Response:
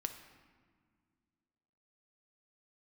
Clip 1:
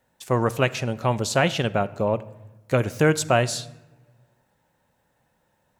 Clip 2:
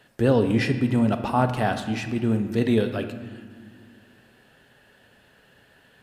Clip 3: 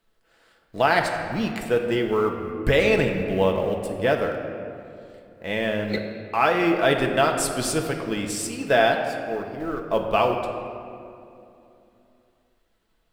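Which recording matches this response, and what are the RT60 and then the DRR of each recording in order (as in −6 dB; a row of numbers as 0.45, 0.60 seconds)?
2; non-exponential decay, 1.9 s, 2.7 s; 13.5, 6.5, 2.5 decibels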